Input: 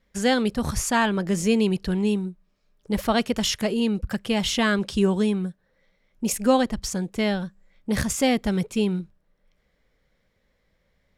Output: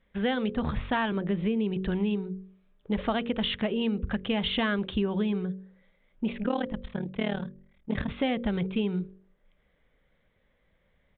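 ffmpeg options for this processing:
-filter_complex "[0:a]aresample=8000,aresample=44100,asettb=1/sr,asplit=3[a][b][c];[a]atrim=end=1.124[d];[b]atrim=start=1.12:end=1.81,asetpts=PTS-STARTPTS,afade=t=in:d=0.004:c=qsin,afade=t=out:st=0.686:d=0.004:c=qsin,acrossover=split=490[e][f];[f]acompressor=threshold=-35dB:ratio=4[g];[e][g]amix=inputs=2:normalize=0[h];[c]atrim=start=1.806[i];[d][h]acrossfade=d=0.004:c1=hsin:c2=qsin[j];[j][i]acrossfade=d=0.004:c1=qsin:c2=hsin,asettb=1/sr,asplit=3[k][l][m];[k]atrim=end=6.434[n];[l]atrim=start=6.43:end=8.09,asetpts=PTS-STARTPTS,afade=t=in:d=0.004:c=qsin,afade=t=out:st=1.656:d=0.004:c=qsin,tremolo=f=38:d=0.919[o];[m]atrim=start=8.086[p];[n][o]acrossfade=d=0.004:c1=hsin:c2=qsin[q];[q][p]acrossfade=d=0.004:c1=qsin:c2=hsin,bandreject=f=47.14:t=h:w=4,bandreject=f=94.28:t=h:w=4,bandreject=f=141.42:t=h:w=4,bandreject=f=188.56:t=h:w=4,bandreject=f=235.7:t=h:w=4,bandreject=f=282.84:t=h:w=4,bandreject=f=329.98:t=h:w=4,bandreject=f=377.12:t=h:w=4,bandreject=f=424.26:t=h:w=4,bandreject=f=471.4:t=h:w=4,bandreject=f=518.54:t=h:w=4,bandreject=f=565.68:t=h:w=4,acompressor=threshold=-24dB:ratio=6"

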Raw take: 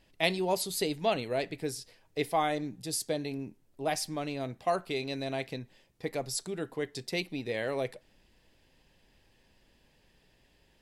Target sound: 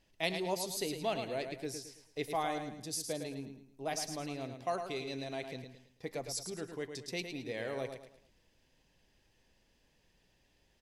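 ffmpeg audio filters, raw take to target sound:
-filter_complex "[0:a]equalizer=f=6.1k:w=4:g=7,asplit=2[a][b];[b]aecho=0:1:109|218|327|436:0.422|0.152|0.0547|0.0197[c];[a][c]amix=inputs=2:normalize=0,volume=-6.5dB"

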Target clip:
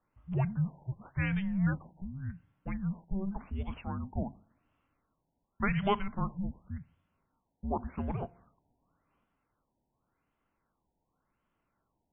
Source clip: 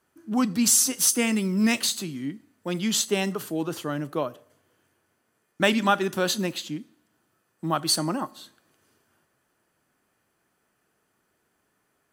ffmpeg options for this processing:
-af "afreqshift=-390,afftfilt=real='re*lt(b*sr/1024,950*pow(3600/950,0.5+0.5*sin(2*PI*0.89*pts/sr)))':imag='im*lt(b*sr/1024,950*pow(3600/950,0.5+0.5*sin(2*PI*0.89*pts/sr)))':win_size=1024:overlap=0.75,volume=-7dB"

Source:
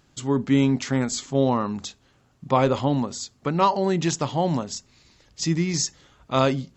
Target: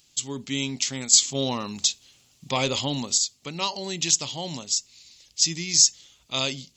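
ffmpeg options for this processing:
-filter_complex "[0:a]asettb=1/sr,asplit=3[a][b][c];[a]atrim=end=1.134[d];[b]atrim=start=1.13:end=3.18,asetpts=PTS-STARTPTS,afade=t=in:d=0.004:c=qsin,afade=t=out:st=2.046:d=0.004:c=qsin,acontrast=29[e];[c]atrim=start=3.176[f];[d][e]acrossfade=d=0.004:c1=hsin:c2=qsin[g];[g][f]acrossfade=d=0.004:c1=qsin:c2=hsin,aexciter=amount=10.8:drive=1.8:freq=2.3k,volume=-11.5dB"

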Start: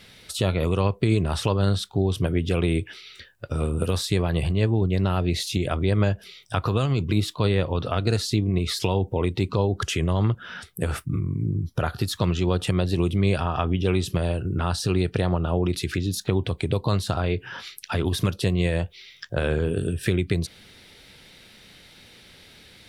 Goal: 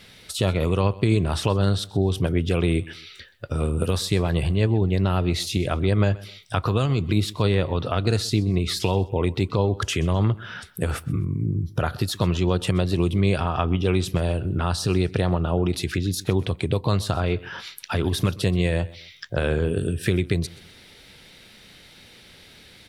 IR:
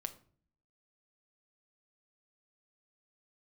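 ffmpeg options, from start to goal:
-af "aecho=1:1:128|256:0.0944|0.0302,volume=1dB"

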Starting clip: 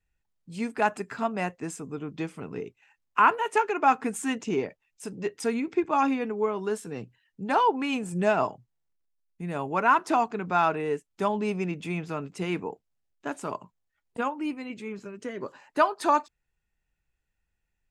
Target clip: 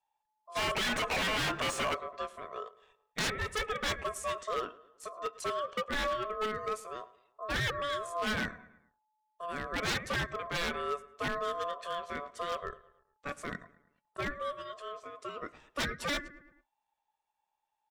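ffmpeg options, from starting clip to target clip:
-filter_complex "[0:a]asplit=3[a][b][c];[a]afade=t=out:st=0.55:d=0.02[d];[b]asplit=2[e][f];[f]highpass=f=720:p=1,volume=38dB,asoftclip=type=tanh:threshold=-10dB[g];[e][g]amix=inputs=2:normalize=0,lowpass=f=1.1k:p=1,volume=-6dB,afade=t=in:st=0.55:d=0.02,afade=t=out:st=1.93:d=0.02[h];[c]afade=t=in:st=1.93:d=0.02[i];[d][h][i]amix=inputs=3:normalize=0,aeval=exprs='val(0)*sin(2*PI*860*n/s)':c=same,asplit=2[j][k];[k]adelay=108,lowpass=f=4.2k:p=1,volume=-19.5dB,asplit=2[l][m];[m]adelay=108,lowpass=f=4.2k:p=1,volume=0.49,asplit=2[n][o];[o]adelay=108,lowpass=f=4.2k:p=1,volume=0.49,asplit=2[p][q];[q]adelay=108,lowpass=f=4.2k:p=1,volume=0.49[r];[l][n][p][r]amix=inputs=4:normalize=0[s];[j][s]amix=inputs=2:normalize=0,aeval=exprs='0.075*(abs(mod(val(0)/0.075+3,4)-2)-1)':c=same,volume=-3dB"

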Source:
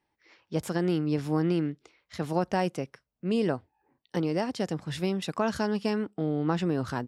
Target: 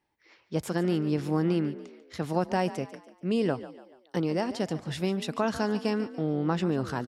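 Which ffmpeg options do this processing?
-filter_complex "[0:a]asplit=5[a][b][c][d][e];[b]adelay=144,afreqshift=39,volume=-15dB[f];[c]adelay=288,afreqshift=78,volume=-22.3dB[g];[d]adelay=432,afreqshift=117,volume=-29.7dB[h];[e]adelay=576,afreqshift=156,volume=-37dB[i];[a][f][g][h][i]amix=inputs=5:normalize=0"

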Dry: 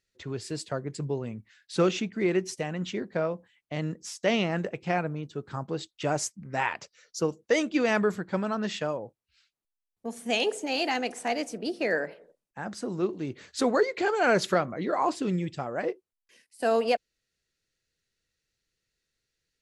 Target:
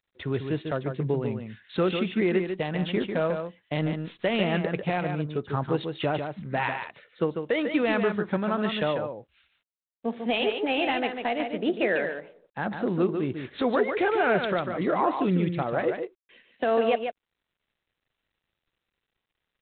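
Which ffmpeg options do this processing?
-filter_complex "[0:a]alimiter=limit=-21dB:level=0:latency=1:release=366,asplit=3[a][b][c];[a]afade=t=out:st=2.37:d=0.02[d];[b]aeval=exprs='0.0891*(cos(1*acos(clip(val(0)/0.0891,-1,1)))-cos(1*PI/2))+0.001*(cos(2*acos(clip(val(0)/0.0891,-1,1)))-cos(2*PI/2))+0.000562*(cos(6*acos(clip(val(0)/0.0891,-1,1)))-cos(6*PI/2))+0.00251*(cos(7*acos(clip(val(0)/0.0891,-1,1)))-cos(7*PI/2))+0.00112*(cos(8*acos(clip(val(0)/0.0891,-1,1)))-cos(8*PI/2))':c=same,afade=t=in:st=2.37:d=0.02,afade=t=out:st=4.37:d=0.02[e];[c]afade=t=in:st=4.37:d=0.02[f];[d][e][f]amix=inputs=3:normalize=0,asplit=2[g][h];[h]aecho=0:1:146:0.473[i];[g][i]amix=inputs=2:normalize=0,volume=6dB" -ar 8000 -c:a adpcm_g726 -b:a 32k

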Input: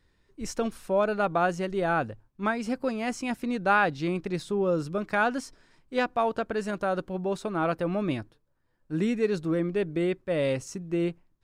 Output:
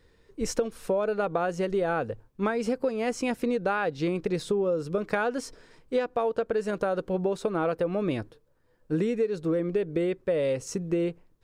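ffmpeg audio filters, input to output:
-af "equalizer=f=470:t=o:w=0.38:g=11.5,acompressor=threshold=-28dB:ratio=12,volume=5dB"

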